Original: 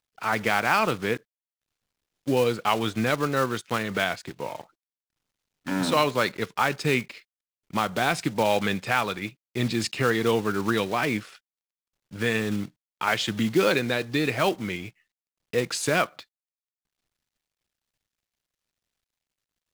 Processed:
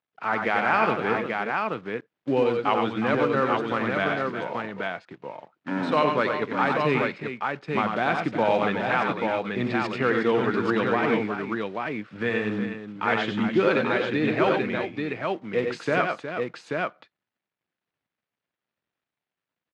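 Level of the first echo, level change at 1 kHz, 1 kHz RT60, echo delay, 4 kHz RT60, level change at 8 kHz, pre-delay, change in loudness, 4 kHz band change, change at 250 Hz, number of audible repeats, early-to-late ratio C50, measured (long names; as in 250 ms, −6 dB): −5.5 dB, +2.5 dB, no reverb audible, 93 ms, no reverb audible, below −15 dB, no reverb audible, +0.5 dB, −5.5 dB, +2.0 dB, 3, no reverb audible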